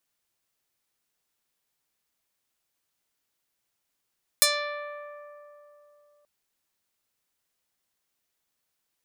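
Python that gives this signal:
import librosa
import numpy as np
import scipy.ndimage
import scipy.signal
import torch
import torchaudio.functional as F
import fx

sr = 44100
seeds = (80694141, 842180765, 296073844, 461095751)

y = fx.pluck(sr, length_s=1.83, note=74, decay_s=3.32, pick=0.38, brightness='medium')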